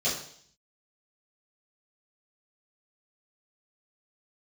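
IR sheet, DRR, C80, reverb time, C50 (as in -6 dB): -11.5 dB, 9.0 dB, 0.60 s, 5.0 dB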